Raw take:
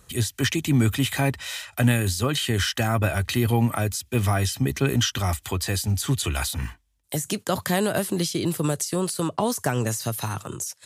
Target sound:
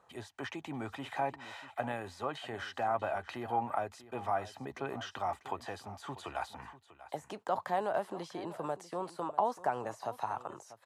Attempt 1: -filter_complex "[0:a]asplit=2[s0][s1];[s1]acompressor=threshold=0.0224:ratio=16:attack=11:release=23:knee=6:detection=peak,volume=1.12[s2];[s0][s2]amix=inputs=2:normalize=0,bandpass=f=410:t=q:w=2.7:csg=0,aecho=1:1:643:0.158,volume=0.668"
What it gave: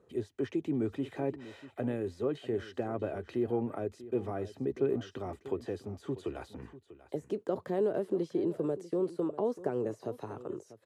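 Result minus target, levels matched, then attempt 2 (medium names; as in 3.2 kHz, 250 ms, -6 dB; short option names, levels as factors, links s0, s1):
1 kHz band -13.5 dB
-filter_complex "[0:a]asplit=2[s0][s1];[s1]acompressor=threshold=0.0224:ratio=16:attack=11:release=23:knee=6:detection=peak,volume=1.12[s2];[s0][s2]amix=inputs=2:normalize=0,bandpass=f=820:t=q:w=2.7:csg=0,aecho=1:1:643:0.158,volume=0.668"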